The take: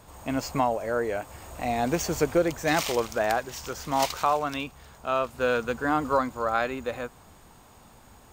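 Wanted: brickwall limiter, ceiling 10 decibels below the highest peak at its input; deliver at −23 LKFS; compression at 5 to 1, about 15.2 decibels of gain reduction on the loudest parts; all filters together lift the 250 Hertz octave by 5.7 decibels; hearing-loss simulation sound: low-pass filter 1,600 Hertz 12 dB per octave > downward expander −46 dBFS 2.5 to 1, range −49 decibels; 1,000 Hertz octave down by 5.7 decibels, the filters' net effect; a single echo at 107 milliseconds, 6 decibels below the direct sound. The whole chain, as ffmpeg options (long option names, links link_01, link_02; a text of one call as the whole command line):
ffmpeg -i in.wav -af "equalizer=frequency=250:width_type=o:gain=7.5,equalizer=frequency=1000:width_type=o:gain=-8,acompressor=threshold=-35dB:ratio=5,alimiter=level_in=8dB:limit=-24dB:level=0:latency=1,volume=-8dB,lowpass=1600,aecho=1:1:107:0.501,agate=range=-49dB:threshold=-46dB:ratio=2.5,volume=19dB" out.wav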